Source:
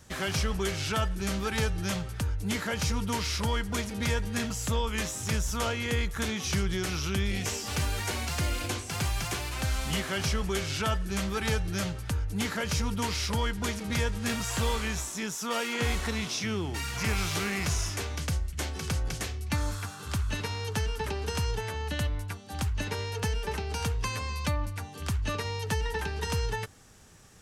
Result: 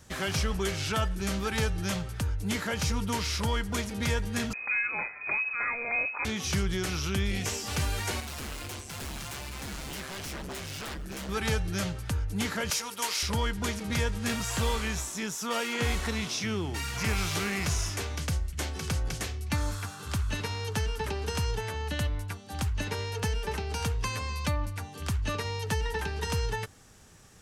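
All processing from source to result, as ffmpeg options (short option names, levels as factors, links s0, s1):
-filter_complex "[0:a]asettb=1/sr,asplit=3[s0][s1][s2];[s0]atrim=end=4.534[s3];[s1]atrim=start=4.53:end=6.25,asetpts=PTS-STARTPTS,afade=t=in:d=0.004:c=qsin,afade=t=out:st=1.716:d=0.004:c=qsin,highpass=46,equalizer=f=310:w=2.4:g=-7,lowpass=f=2200:t=q:w=0.5098,lowpass=f=2200:t=q:w=0.6013,lowpass=f=2200:t=q:w=0.9,lowpass=f=2200:t=q:w=2.563,afreqshift=-2600[s4];[s2]atrim=start=6.246[s5];[s3][s4]acrossfade=d=0.004:c1=hsin:c2=qsin[s6];[s6][s5]acrossfade=d=0.004:c1=qsin:c2=hsin,asettb=1/sr,asplit=3[s7][s8][s9];[s7]atrim=end=8.204[s10];[s8]atrim=start=8.2:end=11.29,asetpts=PTS-STARTPTS,afade=t=in:d=0.004:c=qsin,afade=t=out:st=3.086:d=0.004:c=qsin,tremolo=f=140:d=0.71,aeval=exprs='0.0237*(abs(mod(val(0)/0.0237+3,4)-2)-1)':c=same,acrusher=bits=9:mode=log:mix=0:aa=0.000001[s11];[s9]atrim=start=11.286[s12];[s10][s11]acrossfade=d=0.004:c1=hsin:c2=qsin[s13];[s13][s12]acrossfade=d=0.004:c1=qsin:c2=hsin,asettb=1/sr,asplit=3[s14][s15][s16];[s14]atrim=end=12.704[s17];[s15]atrim=start=12.7:end=13.23,asetpts=PTS-STARTPTS,afade=t=in:d=0.004:c=qsin,afade=t=out:st=0.526:d=0.004:c=qsin,highpass=540,highshelf=f=5800:g=8.5[s18];[s16]atrim=start=13.226[s19];[s17][s18]acrossfade=d=0.004:c1=hsin:c2=qsin[s20];[s20][s19]acrossfade=d=0.004:c1=qsin:c2=hsin"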